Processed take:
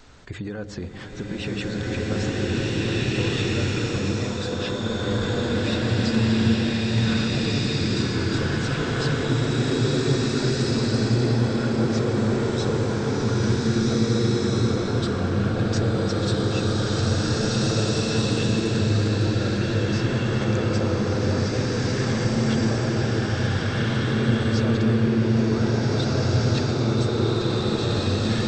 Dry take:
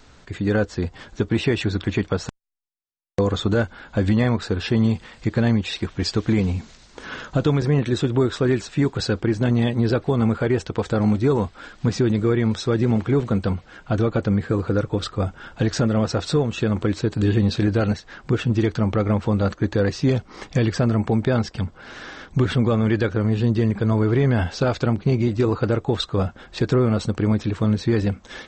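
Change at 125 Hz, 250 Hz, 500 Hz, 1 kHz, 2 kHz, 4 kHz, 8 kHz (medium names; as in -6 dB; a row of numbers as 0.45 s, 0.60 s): -0.5 dB, -1.5 dB, -2.5 dB, -0.5 dB, +1.5 dB, +4.0 dB, +5.5 dB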